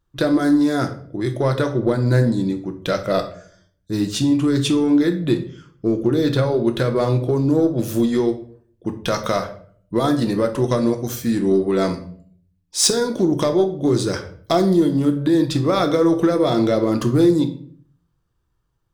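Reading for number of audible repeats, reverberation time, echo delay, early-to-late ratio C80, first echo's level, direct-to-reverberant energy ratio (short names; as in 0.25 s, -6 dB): none, 0.50 s, none, 15.5 dB, none, 5.5 dB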